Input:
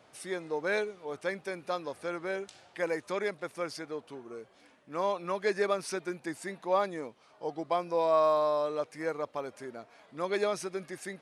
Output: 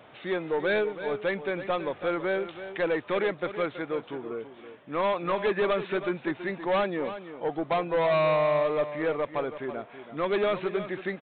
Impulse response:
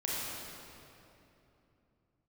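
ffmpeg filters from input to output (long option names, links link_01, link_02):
-af "aresample=8000,asoftclip=type=tanh:threshold=-29.5dB,aresample=44100,aecho=1:1:328:0.266,volume=8.5dB"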